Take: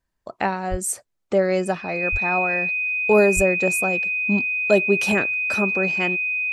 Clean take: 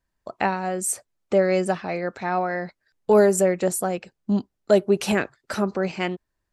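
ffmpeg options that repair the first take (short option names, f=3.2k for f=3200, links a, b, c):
-filter_complex "[0:a]bandreject=f=2.5k:w=30,asplit=3[a][b][c];[a]afade=t=out:st=0.7:d=0.02[d];[b]highpass=f=140:w=0.5412,highpass=f=140:w=1.3066,afade=t=in:st=0.7:d=0.02,afade=t=out:st=0.82:d=0.02[e];[c]afade=t=in:st=0.82:d=0.02[f];[d][e][f]amix=inputs=3:normalize=0,asplit=3[g][h][i];[g]afade=t=out:st=2.11:d=0.02[j];[h]highpass=f=140:w=0.5412,highpass=f=140:w=1.3066,afade=t=in:st=2.11:d=0.02,afade=t=out:st=2.23:d=0.02[k];[i]afade=t=in:st=2.23:d=0.02[l];[j][k][l]amix=inputs=3:normalize=0,asplit=3[m][n][o];[m]afade=t=out:st=3.35:d=0.02[p];[n]highpass=f=140:w=0.5412,highpass=f=140:w=1.3066,afade=t=in:st=3.35:d=0.02,afade=t=out:st=3.47:d=0.02[q];[o]afade=t=in:st=3.47:d=0.02[r];[p][q][r]amix=inputs=3:normalize=0"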